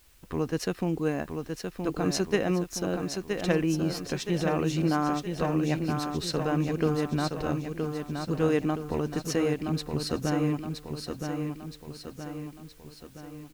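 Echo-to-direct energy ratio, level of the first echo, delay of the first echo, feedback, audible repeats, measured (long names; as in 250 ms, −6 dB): −4.0 dB, −5.5 dB, 970 ms, 51%, 6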